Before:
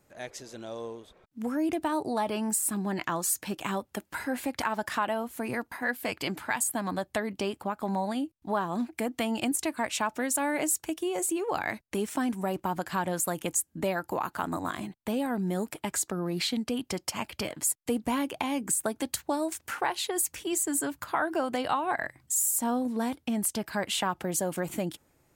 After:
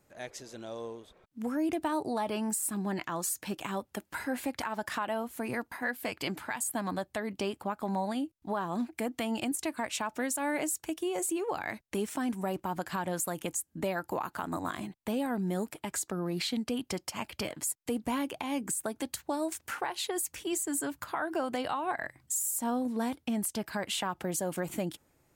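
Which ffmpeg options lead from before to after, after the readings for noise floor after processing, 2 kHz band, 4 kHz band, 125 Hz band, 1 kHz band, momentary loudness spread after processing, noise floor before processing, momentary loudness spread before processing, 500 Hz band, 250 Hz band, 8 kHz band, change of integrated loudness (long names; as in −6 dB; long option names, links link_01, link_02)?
−72 dBFS, −3.5 dB, −3.0 dB, −2.5 dB, −3.5 dB, 6 LU, −70 dBFS, 6 LU, −2.5 dB, −2.5 dB, −4.5 dB, −3.5 dB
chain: -af "alimiter=limit=-20dB:level=0:latency=1:release=129,volume=-2dB"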